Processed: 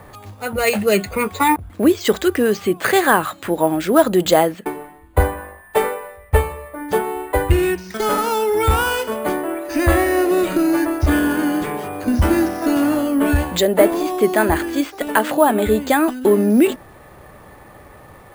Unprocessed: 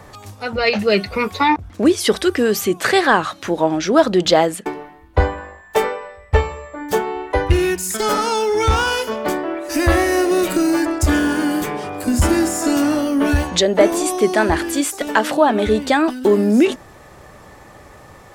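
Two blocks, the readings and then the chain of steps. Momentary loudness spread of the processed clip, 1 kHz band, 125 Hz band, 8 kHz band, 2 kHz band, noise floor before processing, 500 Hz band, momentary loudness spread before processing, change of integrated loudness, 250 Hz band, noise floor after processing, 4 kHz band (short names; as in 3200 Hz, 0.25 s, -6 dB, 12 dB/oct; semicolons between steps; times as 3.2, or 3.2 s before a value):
8 LU, -0.5 dB, 0.0 dB, -3.5 dB, -1.0 dB, -43 dBFS, 0.0 dB, 8 LU, -0.5 dB, 0.0 dB, -43 dBFS, -4.0 dB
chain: high shelf 7000 Hz -12 dB; careless resampling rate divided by 4×, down filtered, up hold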